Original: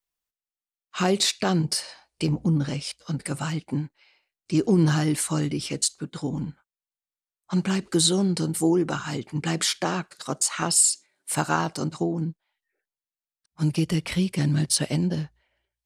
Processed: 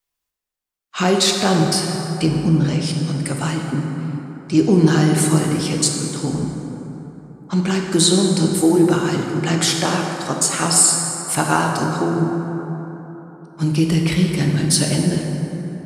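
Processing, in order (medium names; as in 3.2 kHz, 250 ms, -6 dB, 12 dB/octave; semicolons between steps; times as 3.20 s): plate-style reverb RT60 3.7 s, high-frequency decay 0.45×, DRR 1 dB; trim +5 dB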